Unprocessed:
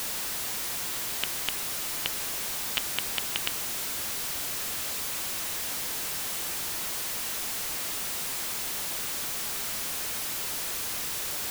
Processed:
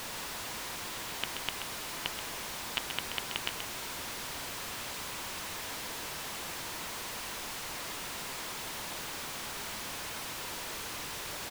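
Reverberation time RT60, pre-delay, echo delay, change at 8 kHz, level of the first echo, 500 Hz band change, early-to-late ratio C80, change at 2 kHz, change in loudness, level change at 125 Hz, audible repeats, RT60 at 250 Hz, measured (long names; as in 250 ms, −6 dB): no reverb audible, no reverb audible, 130 ms, −8.5 dB, −8.0 dB, −1.5 dB, no reverb audible, −2.5 dB, −7.5 dB, −1.5 dB, 1, no reverb audible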